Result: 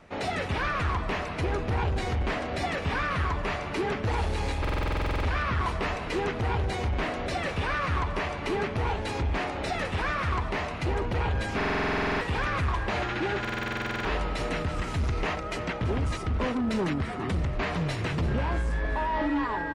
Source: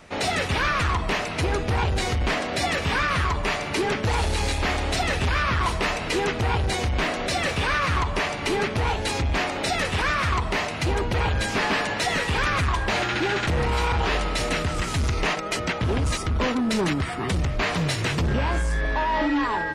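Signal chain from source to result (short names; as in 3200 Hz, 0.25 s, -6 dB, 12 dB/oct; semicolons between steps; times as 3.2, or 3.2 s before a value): high shelf 3400 Hz -11.5 dB; feedback echo 0.335 s, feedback 56%, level -14 dB; stuck buffer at 4.6/11.56/13.4, samples 2048, times 13; gain -4 dB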